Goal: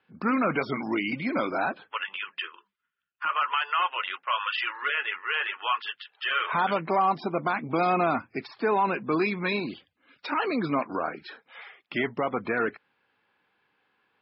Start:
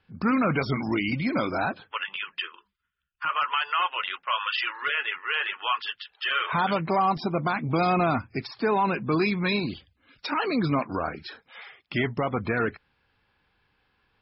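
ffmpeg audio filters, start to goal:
-af "highpass=240,lowpass=3.3k"

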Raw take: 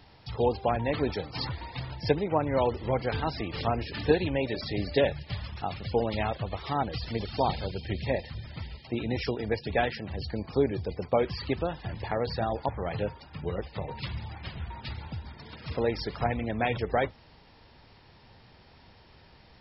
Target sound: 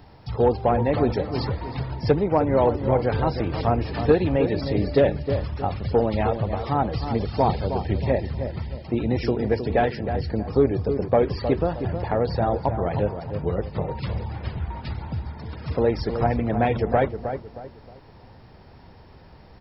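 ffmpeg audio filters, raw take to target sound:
-filter_complex "[0:a]equalizer=f=3.4k:t=o:w=2.1:g=-10.5,asoftclip=type=tanh:threshold=-15dB,asplit=2[a][b];[b]adelay=313,lowpass=f=1.5k:p=1,volume=-8dB,asplit=2[c][d];[d]adelay=313,lowpass=f=1.5k:p=1,volume=0.35,asplit=2[e][f];[f]adelay=313,lowpass=f=1.5k:p=1,volume=0.35,asplit=2[g][h];[h]adelay=313,lowpass=f=1.5k:p=1,volume=0.35[i];[a][c][e][g][i]amix=inputs=5:normalize=0,volume=8dB"

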